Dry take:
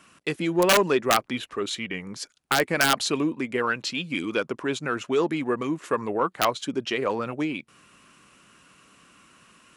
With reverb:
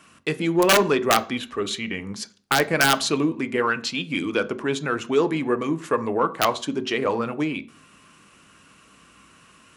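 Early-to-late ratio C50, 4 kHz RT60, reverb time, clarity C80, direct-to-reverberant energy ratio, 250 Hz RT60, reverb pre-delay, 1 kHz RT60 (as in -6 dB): 18.0 dB, 0.35 s, 0.45 s, 22.5 dB, 11.0 dB, 0.55 s, 3 ms, 0.45 s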